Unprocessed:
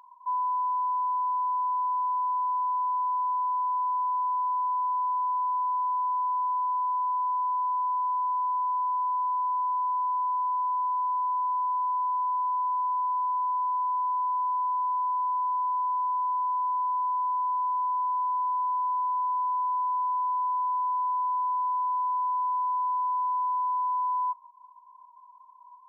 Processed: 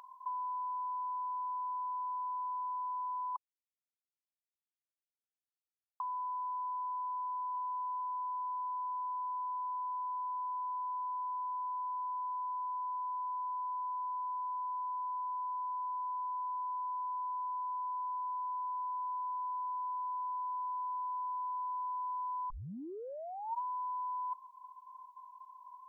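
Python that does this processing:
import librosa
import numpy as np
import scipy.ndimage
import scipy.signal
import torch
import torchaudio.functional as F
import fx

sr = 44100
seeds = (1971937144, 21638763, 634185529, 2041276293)

y = fx.tilt_shelf(x, sr, db=8.0, hz=970.0, at=(7.55, 7.99), fade=0.02)
y = fx.edit(y, sr, fx.silence(start_s=3.36, length_s=2.64),
    fx.tape_start(start_s=22.5, length_s=1.11), tone=tone)
y = fx.notch(y, sr, hz=950.0, q=5.9)
y = fx.over_compress(y, sr, threshold_db=-38.0, ratio=-1.0)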